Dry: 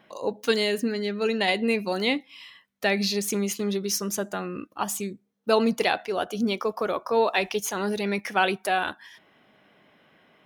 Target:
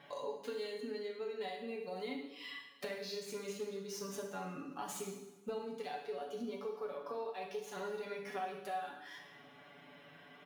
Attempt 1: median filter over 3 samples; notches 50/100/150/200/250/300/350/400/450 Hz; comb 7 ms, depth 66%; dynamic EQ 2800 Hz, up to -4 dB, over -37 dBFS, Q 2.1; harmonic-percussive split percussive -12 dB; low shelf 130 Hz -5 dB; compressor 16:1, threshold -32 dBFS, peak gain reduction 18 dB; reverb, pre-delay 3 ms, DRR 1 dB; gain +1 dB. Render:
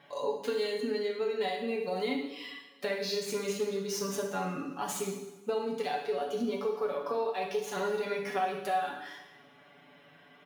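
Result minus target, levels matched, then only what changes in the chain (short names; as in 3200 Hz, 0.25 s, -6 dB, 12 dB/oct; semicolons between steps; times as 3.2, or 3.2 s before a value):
compressor: peak gain reduction -10 dB
change: compressor 16:1, threshold -42.5 dBFS, peak gain reduction 27.5 dB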